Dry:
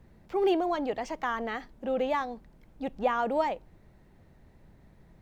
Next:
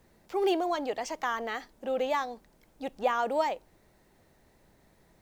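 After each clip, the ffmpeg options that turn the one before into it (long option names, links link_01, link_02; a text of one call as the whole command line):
ffmpeg -i in.wav -af "bass=frequency=250:gain=-10,treble=frequency=4000:gain=9" out.wav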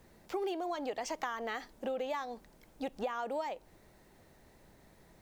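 ffmpeg -i in.wav -af "acompressor=threshold=-35dB:ratio=10,volume=2dB" out.wav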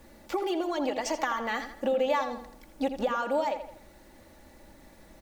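ffmpeg -i in.wav -filter_complex "[0:a]aecho=1:1:3.5:0.59,asplit=2[link_01][link_02];[link_02]adelay=82,lowpass=frequency=4900:poles=1,volume=-9.5dB,asplit=2[link_03][link_04];[link_04]adelay=82,lowpass=frequency=4900:poles=1,volume=0.44,asplit=2[link_05][link_06];[link_06]adelay=82,lowpass=frequency=4900:poles=1,volume=0.44,asplit=2[link_07][link_08];[link_08]adelay=82,lowpass=frequency=4900:poles=1,volume=0.44,asplit=2[link_09][link_10];[link_10]adelay=82,lowpass=frequency=4900:poles=1,volume=0.44[link_11];[link_01][link_03][link_05][link_07][link_09][link_11]amix=inputs=6:normalize=0,volume=6dB" out.wav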